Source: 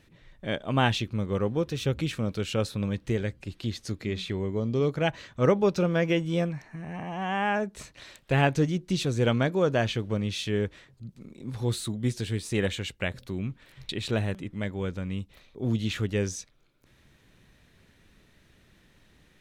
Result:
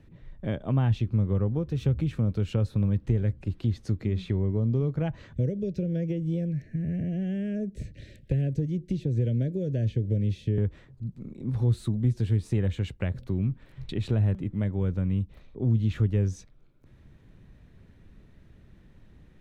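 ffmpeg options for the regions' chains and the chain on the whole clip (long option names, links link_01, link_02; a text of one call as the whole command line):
ffmpeg -i in.wav -filter_complex "[0:a]asettb=1/sr,asplit=3[link_01][link_02][link_03];[link_01]atrim=end=5.334[link_04];[link_02]atrim=start=5.33:end=10.58,asetpts=PTS-STARTPTS,afade=type=in:duration=0.004:curve=qsin,afade=type=out:start_time=5.246:duration=0.004:curve=qsin,acrossover=split=320|950|4000[link_05][link_06][link_07][link_08];[link_05]acompressor=threshold=-40dB:ratio=3[link_09];[link_06]acompressor=threshold=-34dB:ratio=3[link_10];[link_07]acompressor=threshold=-48dB:ratio=3[link_11];[link_08]acompressor=threshold=-50dB:ratio=3[link_12];[link_09][link_10][link_11][link_12]amix=inputs=4:normalize=0,asuperstop=centerf=1000:order=8:qfactor=0.94,equalizer=frequency=92:width_type=o:width=2.3:gain=8[link_13];[link_03]atrim=start=10.576[link_14];[link_04][link_13]acrossfade=duration=0.004:curve1=hsin:curve2=qsin[link_15];[link_15][link_14]acrossfade=duration=0.004:curve1=qsin:curve2=hsin,lowshelf=frequency=250:gain=10,acrossover=split=130[link_16][link_17];[link_17]acompressor=threshold=-27dB:ratio=6[link_18];[link_16][link_18]amix=inputs=2:normalize=0,highshelf=frequency=2100:gain=-11.5" out.wav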